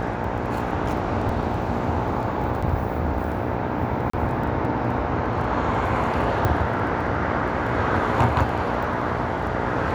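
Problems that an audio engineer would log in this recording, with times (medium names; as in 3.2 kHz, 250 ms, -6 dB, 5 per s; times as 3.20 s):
buzz 60 Hz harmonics 15 -29 dBFS
crackle 11 per s -32 dBFS
1.29 s: dropout 3 ms
2.62–2.63 s: dropout 5.3 ms
4.10–4.13 s: dropout 34 ms
6.45 s: pop -10 dBFS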